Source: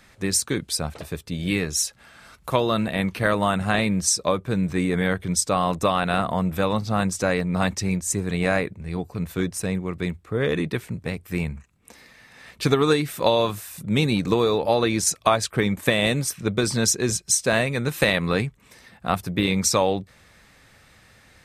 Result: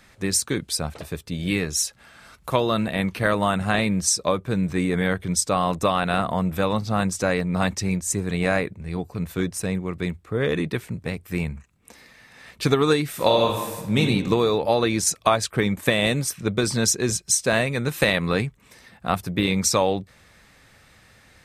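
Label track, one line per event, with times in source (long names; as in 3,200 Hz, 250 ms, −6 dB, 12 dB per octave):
13.090000	14.010000	thrown reverb, RT60 1.3 s, DRR 2 dB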